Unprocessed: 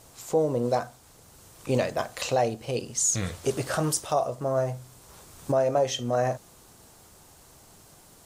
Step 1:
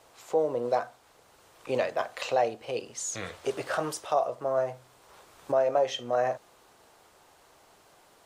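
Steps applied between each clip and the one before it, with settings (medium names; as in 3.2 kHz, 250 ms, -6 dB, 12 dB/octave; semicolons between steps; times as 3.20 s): three-band isolator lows -15 dB, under 360 Hz, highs -12 dB, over 3.9 kHz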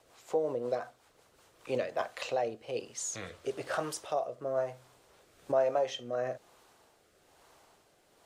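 rotary cabinet horn 5.5 Hz, later 1.1 Hz, at 1.20 s; trim -2 dB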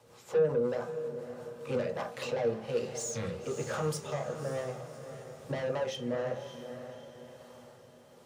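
saturation -32.5 dBFS, distortion -8 dB; echo that smears into a reverb 582 ms, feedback 45%, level -10 dB; on a send at -1 dB: reverberation RT60 0.30 s, pre-delay 3 ms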